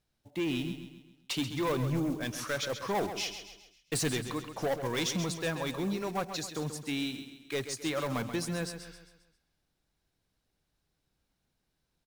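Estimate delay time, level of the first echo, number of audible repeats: 133 ms, −9.5 dB, 4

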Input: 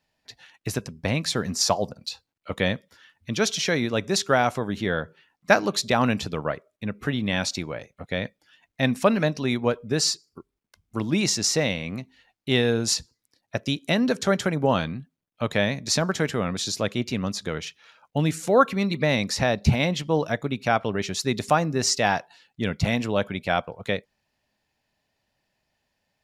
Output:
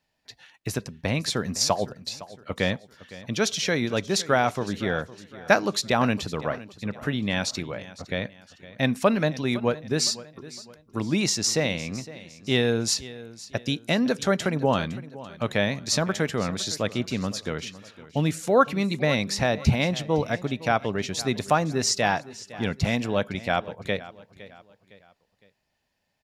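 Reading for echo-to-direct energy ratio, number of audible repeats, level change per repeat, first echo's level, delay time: −17.0 dB, 3, −8.0 dB, −17.5 dB, 510 ms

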